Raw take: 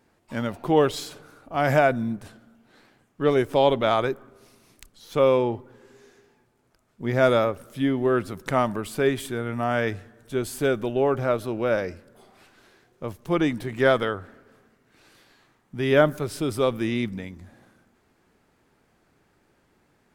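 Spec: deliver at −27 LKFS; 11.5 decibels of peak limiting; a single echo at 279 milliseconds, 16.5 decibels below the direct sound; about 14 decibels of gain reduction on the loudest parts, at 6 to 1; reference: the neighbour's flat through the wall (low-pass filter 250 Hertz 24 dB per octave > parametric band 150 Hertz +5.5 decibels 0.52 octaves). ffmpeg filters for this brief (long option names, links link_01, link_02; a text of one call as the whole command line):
ffmpeg -i in.wav -af "acompressor=threshold=-29dB:ratio=6,alimiter=level_in=2dB:limit=-24dB:level=0:latency=1,volume=-2dB,lowpass=frequency=250:width=0.5412,lowpass=frequency=250:width=1.3066,equalizer=frequency=150:width_type=o:width=0.52:gain=5.5,aecho=1:1:279:0.15,volume=14.5dB" out.wav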